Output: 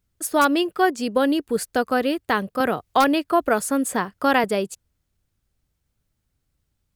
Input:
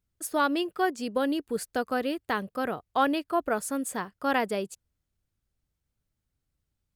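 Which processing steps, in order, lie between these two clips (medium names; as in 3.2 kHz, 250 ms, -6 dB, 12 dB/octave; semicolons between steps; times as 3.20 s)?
in parallel at -6.5 dB: integer overflow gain 13.5 dB; 2.60–4.44 s: on the sum: three bands compressed up and down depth 40%; trim +4 dB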